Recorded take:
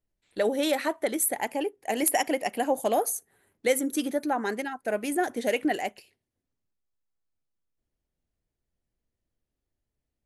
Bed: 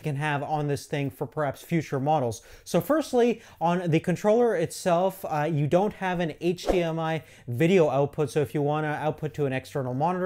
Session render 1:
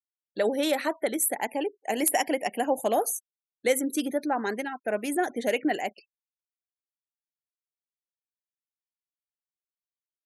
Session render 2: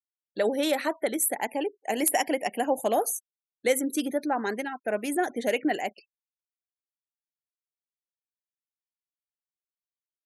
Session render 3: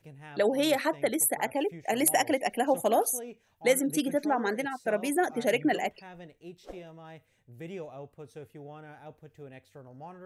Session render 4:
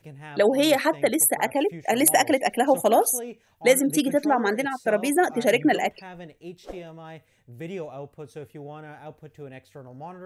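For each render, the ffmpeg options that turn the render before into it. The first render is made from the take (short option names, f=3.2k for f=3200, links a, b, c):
-af "highpass=f=110:w=0.5412,highpass=f=110:w=1.3066,afftfilt=real='re*gte(hypot(re,im),0.00562)':imag='im*gte(hypot(re,im),0.00562)':win_size=1024:overlap=0.75"
-af anull
-filter_complex "[1:a]volume=-20dB[a];[0:a][a]amix=inputs=2:normalize=0"
-af "volume=6dB"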